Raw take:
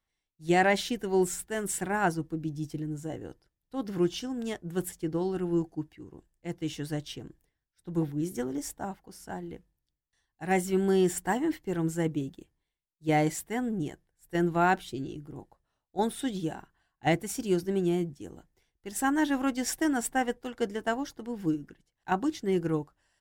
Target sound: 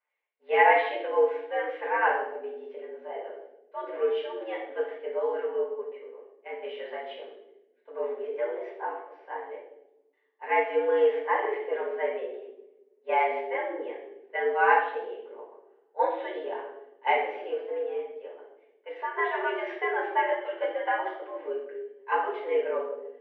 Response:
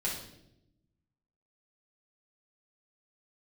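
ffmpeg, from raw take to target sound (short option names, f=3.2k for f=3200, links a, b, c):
-filter_complex "[0:a]asettb=1/sr,asplit=3[a][b][c];[a]atrim=end=17.204[d];[b]atrim=start=17.2:end=19.18,asetpts=PTS-STARTPTS,afade=t=in:d=0.004:c=qsin,afade=t=out:st=1.976:d=0.004:c=qsin,acompressor=threshold=-31dB:ratio=6[e];[c]atrim=start=19.176[f];[d][e]acrossfade=d=0.004:c1=hsin:c2=qsin[g];[g][f]acrossfade=d=0.004:c1=qsin:c2=hsin[h];[1:a]atrim=start_sample=2205[i];[h][i]afir=irnorm=-1:irlink=0,highpass=f=380:t=q:w=0.5412,highpass=f=380:t=q:w=1.307,lowpass=f=2.6k:t=q:w=0.5176,lowpass=f=2.6k:t=q:w=0.7071,lowpass=f=2.6k:t=q:w=1.932,afreqshift=100"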